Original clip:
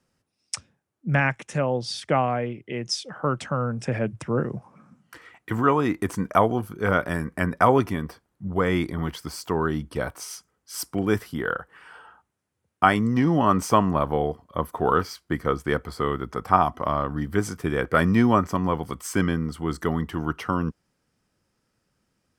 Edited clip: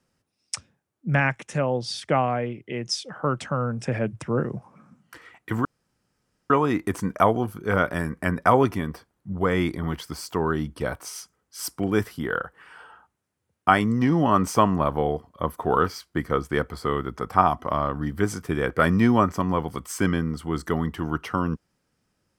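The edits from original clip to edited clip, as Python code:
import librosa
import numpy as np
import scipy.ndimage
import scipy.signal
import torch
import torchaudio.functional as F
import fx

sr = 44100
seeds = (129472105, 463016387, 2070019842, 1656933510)

y = fx.edit(x, sr, fx.insert_room_tone(at_s=5.65, length_s=0.85), tone=tone)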